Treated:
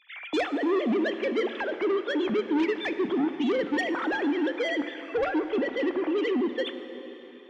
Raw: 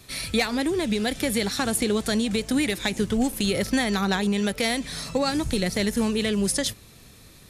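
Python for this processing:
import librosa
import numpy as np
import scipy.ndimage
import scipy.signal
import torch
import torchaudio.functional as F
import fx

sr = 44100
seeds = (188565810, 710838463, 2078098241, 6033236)

y = fx.sine_speech(x, sr)
y = fx.peak_eq(y, sr, hz=290.0, db=3.0, octaves=0.77)
y = 10.0 ** (-22.0 / 20.0) * np.tanh(y / 10.0 ** (-22.0 / 20.0))
y = fx.rev_plate(y, sr, seeds[0], rt60_s=4.1, hf_ratio=0.85, predelay_ms=0, drr_db=9.0)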